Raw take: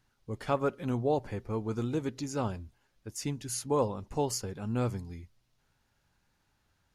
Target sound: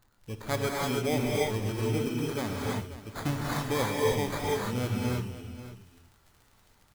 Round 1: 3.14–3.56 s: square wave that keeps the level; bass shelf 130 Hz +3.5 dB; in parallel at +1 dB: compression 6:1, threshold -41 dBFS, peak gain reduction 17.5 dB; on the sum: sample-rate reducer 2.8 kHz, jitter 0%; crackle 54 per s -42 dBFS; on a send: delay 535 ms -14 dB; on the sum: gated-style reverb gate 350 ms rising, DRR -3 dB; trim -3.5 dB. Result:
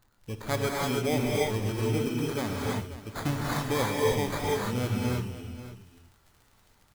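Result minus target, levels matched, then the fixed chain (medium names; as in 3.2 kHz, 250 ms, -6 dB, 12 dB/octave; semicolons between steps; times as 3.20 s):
compression: peak gain reduction -8.5 dB
3.14–3.56 s: square wave that keeps the level; bass shelf 130 Hz +3.5 dB; in parallel at +1 dB: compression 6:1, threshold -51 dBFS, peak gain reduction 26 dB; on the sum: sample-rate reducer 2.8 kHz, jitter 0%; crackle 54 per s -42 dBFS; on a send: delay 535 ms -14 dB; on the sum: gated-style reverb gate 350 ms rising, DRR -3 dB; trim -3.5 dB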